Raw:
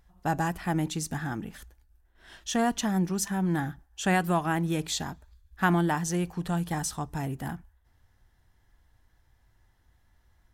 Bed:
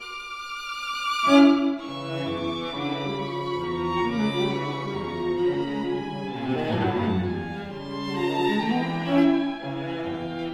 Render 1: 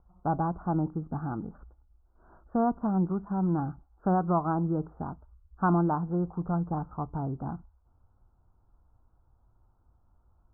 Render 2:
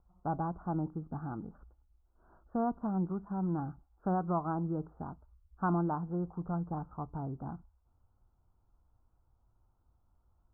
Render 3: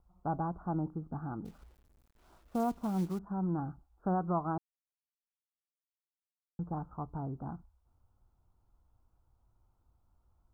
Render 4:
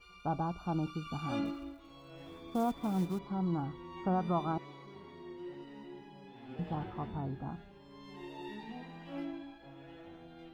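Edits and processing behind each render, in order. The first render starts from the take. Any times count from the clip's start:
steep low-pass 1400 Hz 96 dB/oct
gain -6 dB
1.45–3.19 companded quantiser 6-bit; 4.58–6.59 mute
add bed -21.5 dB

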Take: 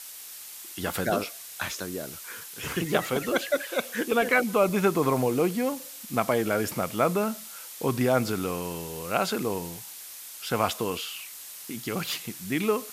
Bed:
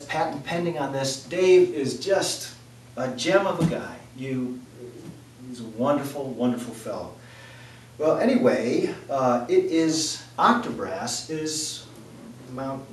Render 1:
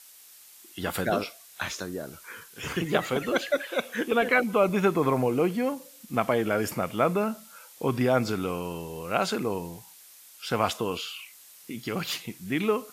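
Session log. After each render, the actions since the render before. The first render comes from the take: noise print and reduce 9 dB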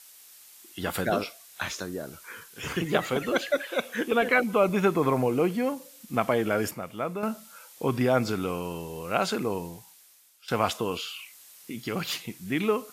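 6.71–7.23 gain -7.5 dB; 9.61–10.48 fade out, to -15.5 dB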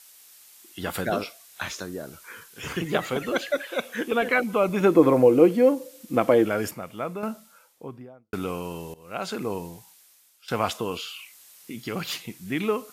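4.8–6.45 small resonant body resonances 320/500 Hz, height 13 dB; 7.04–8.33 studio fade out; 8.94–9.51 fade in, from -19 dB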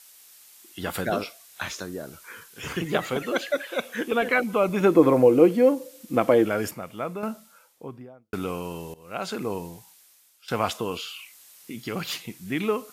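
3.22–3.75 HPF 200 Hz -> 84 Hz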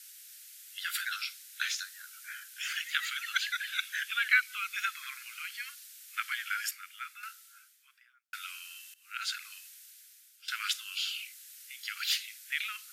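dynamic EQ 4200 Hz, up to +4 dB, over -49 dBFS, Q 1.6; steep high-pass 1400 Hz 72 dB/oct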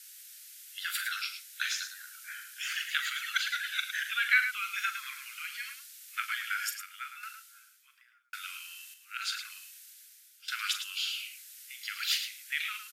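loudspeakers at several distances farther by 14 m -10 dB, 37 m -9 dB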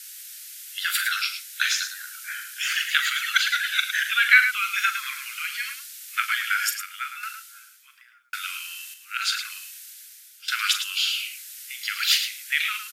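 gain +9.5 dB

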